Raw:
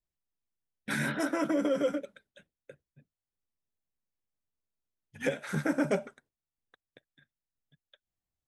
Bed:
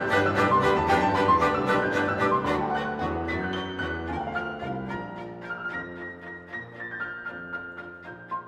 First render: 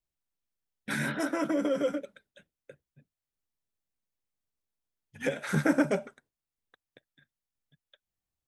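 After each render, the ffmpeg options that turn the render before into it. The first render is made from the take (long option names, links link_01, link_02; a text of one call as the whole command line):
ffmpeg -i in.wav -filter_complex "[0:a]asplit=3[link_01][link_02][link_03];[link_01]atrim=end=5.362[link_04];[link_02]atrim=start=5.358:end=5.822,asetpts=PTS-STARTPTS,volume=4.5dB[link_05];[link_03]atrim=start=5.818[link_06];[link_04][link_05]acrossfade=duration=0.004:curve1=hsin:curve2=hsin[link_07];[link_07][link_06]acrossfade=duration=0.004:curve1=hsin:curve2=hsin" out.wav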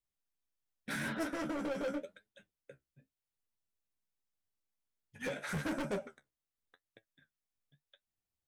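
ffmpeg -i in.wav -af "asoftclip=type=hard:threshold=-29.5dB,flanger=delay=9:depth=7.2:regen=44:speed=0.86:shape=sinusoidal" out.wav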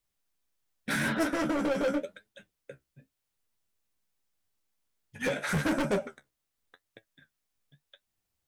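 ffmpeg -i in.wav -af "volume=8.5dB" out.wav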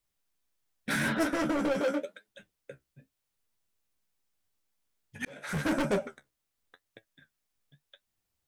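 ffmpeg -i in.wav -filter_complex "[0:a]asettb=1/sr,asplit=3[link_01][link_02][link_03];[link_01]atrim=end=1.804[link_04];[link_02]atrim=start=1.8:end=2.28,asetpts=PTS-STARTPTS,afade=type=in:duration=0.004:curve=qsin,afade=type=out:start_time=0.476:duration=0.004:curve=qsin,highpass=250[link_05];[link_03]atrim=start=2.276[link_06];[link_04][link_05]acrossfade=duration=0.004:curve1=hsin:curve2=qsin[link_07];[link_07][link_06]acrossfade=duration=0.004:curve1=qsin:curve2=hsin,asplit=2[link_08][link_09];[link_08]atrim=end=5.25,asetpts=PTS-STARTPTS,afade=type=out:start_time=5.246:duration=0.004:curve=hsin[link_10];[link_09]atrim=start=5.25,asetpts=PTS-STARTPTS,afade=type=in:duration=0.48[link_11];[link_10][link_11]concat=n=2:v=0:a=1" out.wav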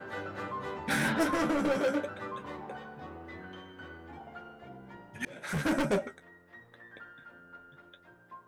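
ffmpeg -i in.wav -i bed.wav -filter_complex "[1:a]volume=-16.5dB[link_01];[0:a][link_01]amix=inputs=2:normalize=0" out.wav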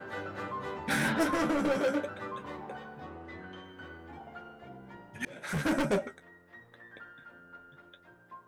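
ffmpeg -i in.wav -filter_complex "[0:a]asettb=1/sr,asplit=3[link_01][link_02][link_03];[link_01]atrim=end=3.054[link_04];[link_02]atrim=start=3.05:end=3.64,asetpts=PTS-STARTPTS,afade=type=in:duration=0.004:curve=qsin,afade=type=out:start_time=0.586:duration=0.004:curve=qsin,lowpass=10000[link_05];[link_03]atrim=start=3.636[link_06];[link_04][link_05]acrossfade=duration=0.004:curve1=hsin:curve2=qsin[link_07];[link_07][link_06]acrossfade=duration=0.004:curve1=qsin:curve2=hsin" out.wav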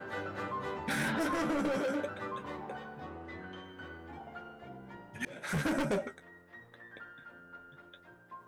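ffmpeg -i in.wav -af "alimiter=level_in=1.5dB:limit=-24dB:level=0:latency=1:release=15,volume=-1.5dB,areverse,acompressor=mode=upward:threshold=-52dB:ratio=2.5,areverse" out.wav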